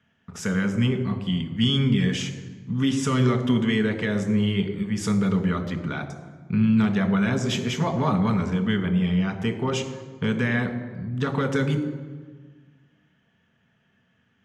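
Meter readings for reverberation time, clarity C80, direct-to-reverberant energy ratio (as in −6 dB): 1.5 s, 11.5 dB, 5.0 dB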